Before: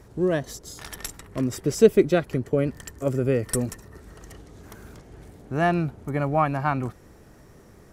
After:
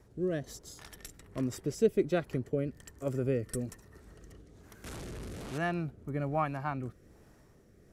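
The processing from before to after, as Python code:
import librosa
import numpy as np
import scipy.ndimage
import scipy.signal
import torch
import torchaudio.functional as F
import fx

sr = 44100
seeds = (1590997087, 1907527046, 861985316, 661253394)

y = fx.delta_mod(x, sr, bps=64000, step_db=-27.0, at=(4.84, 5.58))
y = fx.rotary(y, sr, hz=1.2)
y = y * librosa.db_to_amplitude(-7.5)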